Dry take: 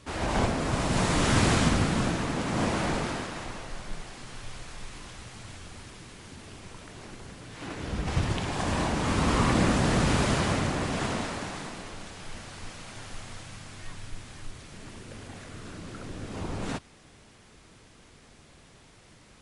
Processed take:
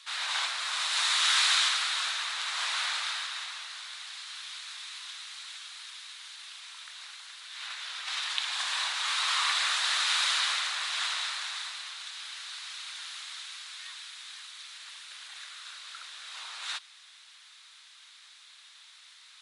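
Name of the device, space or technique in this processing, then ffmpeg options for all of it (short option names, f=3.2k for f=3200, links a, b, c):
headphones lying on a table: -af "highpass=f=1.2k:w=0.5412,highpass=f=1.2k:w=1.3066,equalizer=f=3.8k:t=o:w=0.51:g=11.5,volume=1.5dB"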